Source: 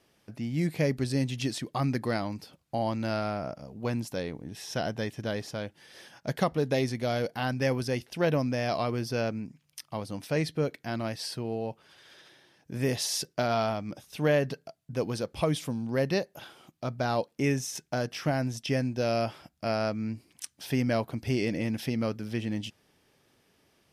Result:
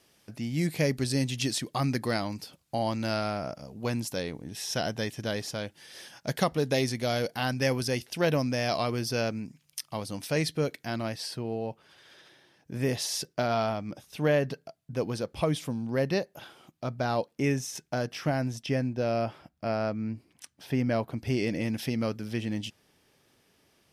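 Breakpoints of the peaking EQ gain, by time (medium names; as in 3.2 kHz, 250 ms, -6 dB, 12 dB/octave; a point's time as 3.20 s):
peaking EQ 10 kHz 2.8 oct
10.74 s +7.5 dB
11.32 s -1.5 dB
18.49 s -1.5 dB
18.97 s -9 dB
20.72 s -9 dB
21.64 s +2.5 dB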